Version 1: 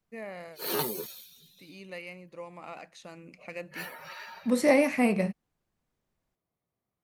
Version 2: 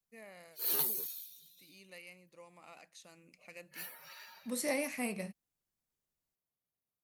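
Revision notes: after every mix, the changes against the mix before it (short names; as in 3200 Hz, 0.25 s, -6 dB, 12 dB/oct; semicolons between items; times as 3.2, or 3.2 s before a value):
master: add pre-emphasis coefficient 0.8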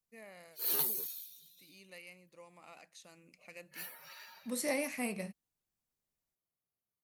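none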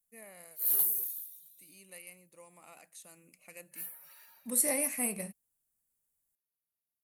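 background -8.5 dB; master: add resonant high shelf 7100 Hz +12 dB, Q 1.5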